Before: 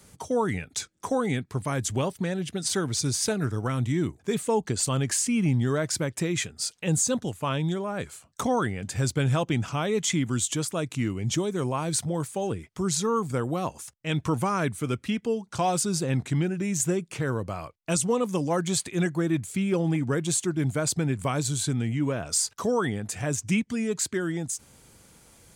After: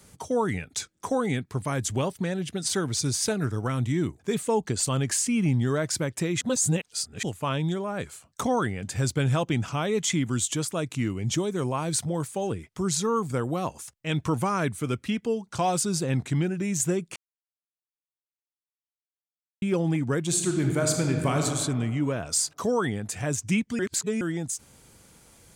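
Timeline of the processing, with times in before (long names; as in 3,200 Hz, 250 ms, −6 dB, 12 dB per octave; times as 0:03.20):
0:06.41–0:07.23: reverse
0:17.16–0:19.62: silence
0:20.27–0:21.43: thrown reverb, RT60 1.8 s, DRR 2 dB
0:23.79–0:24.21: reverse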